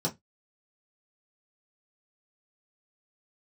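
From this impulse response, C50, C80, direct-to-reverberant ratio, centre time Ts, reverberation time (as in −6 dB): 20.0 dB, 31.5 dB, −4.5 dB, 12 ms, 0.15 s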